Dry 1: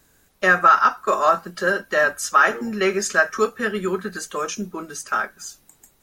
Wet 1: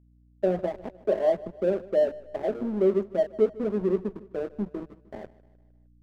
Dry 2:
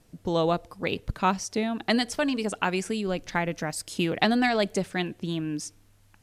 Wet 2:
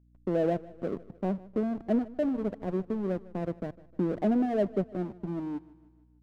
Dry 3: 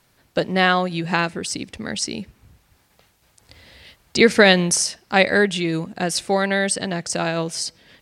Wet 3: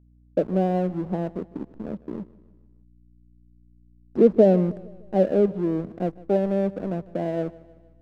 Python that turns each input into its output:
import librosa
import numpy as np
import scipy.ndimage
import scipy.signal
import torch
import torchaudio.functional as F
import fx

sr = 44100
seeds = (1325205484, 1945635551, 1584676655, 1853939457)

y = scipy.signal.sosfilt(scipy.signal.ellip(3, 1.0, 40, [180.0, 660.0], 'bandpass', fs=sr, output='sos'), x)
y = fx.backlash(y, sr, play_db=-30.5)
y = fx.add_hum(y, sr, base_hz=60, snr_db=31)
y = fx.echo_feedback(y, sr, ms=153, feedback_pct=51, wet_db=-20.5)